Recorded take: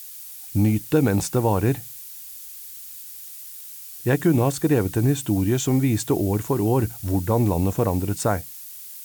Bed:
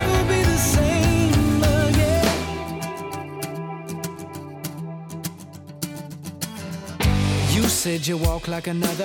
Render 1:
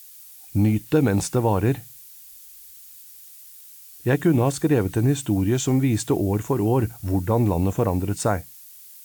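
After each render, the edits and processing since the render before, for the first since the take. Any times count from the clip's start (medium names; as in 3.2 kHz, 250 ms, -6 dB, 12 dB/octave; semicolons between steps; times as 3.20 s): noise print and reduce 6 dB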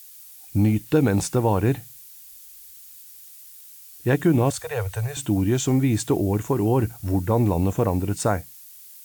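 4.50–5.17 s: elliptic band-stop 110–500 Hz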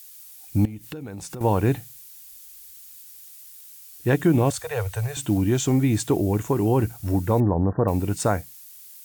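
0.65–1.41 s: compression 20:1, threshold -31 dBFS; 4.57–5.38 s: short-mantissa float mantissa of 4-bit; 7.40–7.88 s: brick-wall FIR low-pass 1.9 kHz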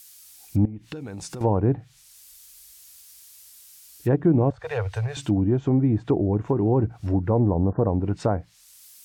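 low-pass that closes with the level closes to 860 Hz, closed at -18 dBFS; dynamic bell 4.9 kHz, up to +4 dB, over -58 dBFS, Q 2.3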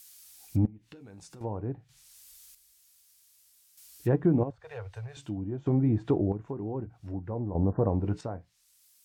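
flange 0.45 Hz, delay 3.7 ms, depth 6.9 ms, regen -76%; square tremolo 0.53 Hz, depth 65%, duty 35%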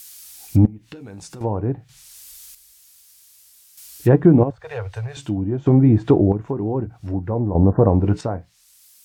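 trim +11.5 dB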